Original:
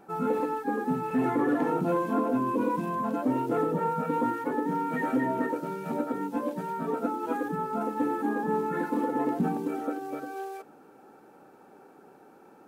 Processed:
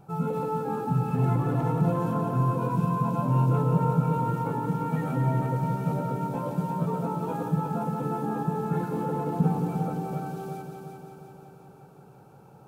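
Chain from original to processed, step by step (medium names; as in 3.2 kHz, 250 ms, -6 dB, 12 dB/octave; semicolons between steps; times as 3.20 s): peaking EQ 1.8 kHz -11.5 dB 0.53 oct; peak limiter -20.5 dBFS, peak gain reduction 3.5 dB; resonant low shelf 190 Hz +11.5 dB, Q 3; on a send: multi-head delay 176 ms, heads first and second, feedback 62%, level -8.5 dB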